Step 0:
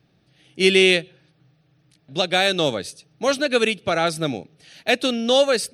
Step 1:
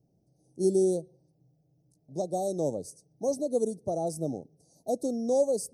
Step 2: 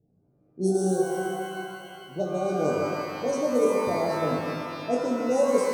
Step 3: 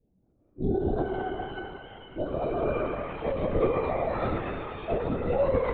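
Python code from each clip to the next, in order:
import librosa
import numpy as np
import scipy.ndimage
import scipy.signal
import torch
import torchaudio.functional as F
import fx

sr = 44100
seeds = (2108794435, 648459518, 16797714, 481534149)

y1 = scipy.signal.sosfilt(scipy.signal.cheby2(4, 60, [1500.0, 3100.0], 'bandstop', fs=sr, output='sos'), x)
y1 = y1 * librosa.db_to_amplitude(-7.0)
y2 = fx.env_lowpass(y1, sr, base_hz=730.0, full_db=-22.0)
y2 = fx.doubler(y2, sr, ms=20.0, db=-6.5)
y2 = fx.rev_shimmer(y2, sr, seeds[0], rt60_s=2.8, semitones=12, shimmer_db=-8, drr_db=-1.5)
y3 = fx.lpc_vocoder(y2, sr, seeds[1], excitation='whisper', order=16)
y3 = y3 * librosa.db_to_amplitude(-2.5)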